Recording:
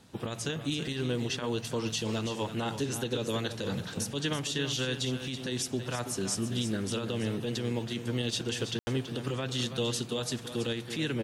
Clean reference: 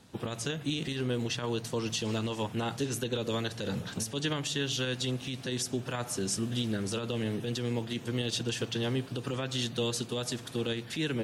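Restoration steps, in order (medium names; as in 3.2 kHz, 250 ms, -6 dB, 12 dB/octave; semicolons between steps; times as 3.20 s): room tone fill 8.79–8.87 s; inverse comb 329 ms -10 dB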